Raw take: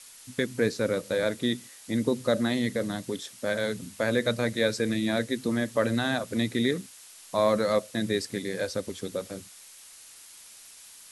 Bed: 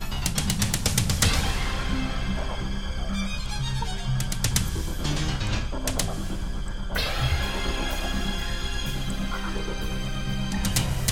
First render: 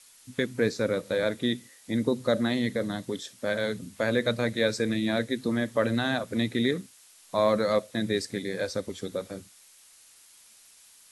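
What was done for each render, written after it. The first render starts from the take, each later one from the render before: noise print and reduce 6 dB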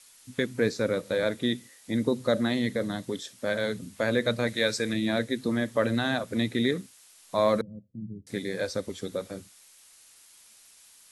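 4.47–4.93 s: tilt shelf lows -3.5 dB; 7.61–8.27 s: four-pole ladder low-pass 230 Hz, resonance 25%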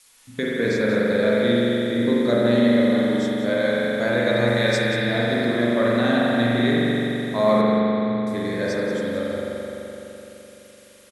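delay 182 ms -11 dB; spring tank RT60 3.7 s, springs 42 ms, chirp 55 ms, DRR -6.5 dB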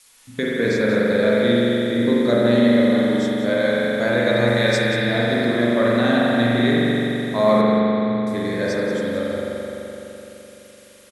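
trim +2 dB

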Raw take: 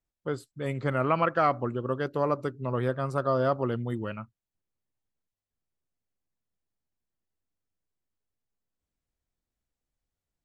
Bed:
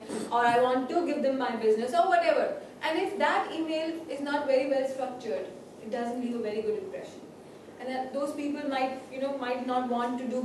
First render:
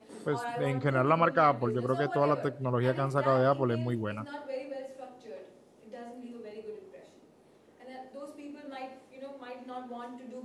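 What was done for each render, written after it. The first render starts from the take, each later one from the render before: add bed -12.5 dB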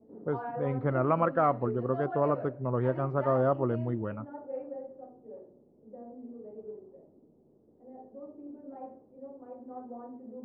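level-controlled noise filter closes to 380 Hz, open at -23.5 dBFS; low-pass 1.2 kHz 12 dB/octave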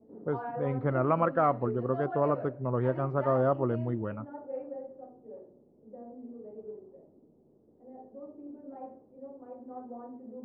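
no audible change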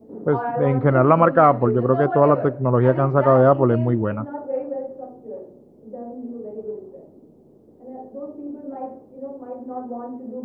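trim +12 dB; peak limiter -3 dBFS, peak gain reduction 1 dB

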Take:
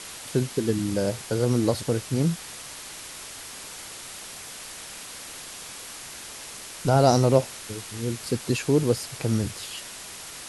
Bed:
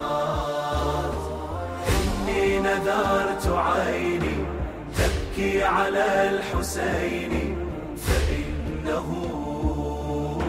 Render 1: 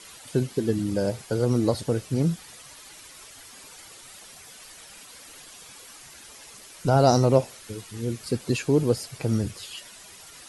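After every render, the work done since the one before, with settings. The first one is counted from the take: noise reduction 10 dB, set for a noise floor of -40 dBFS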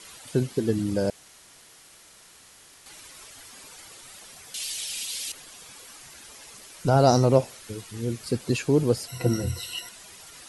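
1.10–2.86 s: room tone; 4.54–5.32 s: resonant high shelf 2.1 kHz +13 dB, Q 1.5; 9.08–9.89 s: rippled EQ curve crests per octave 2, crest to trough 18 dB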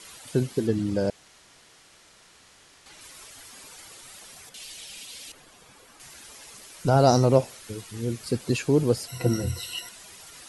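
0.67–3.01 s: distance through air 51 m; 4.49–6.00 s: treble shelf 2.3 kHz -11 dB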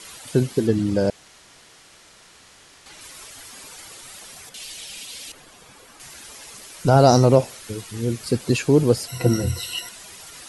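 trim +5 dB; peak limiter -2 dBFS, peak gain reduction 2.5 dB

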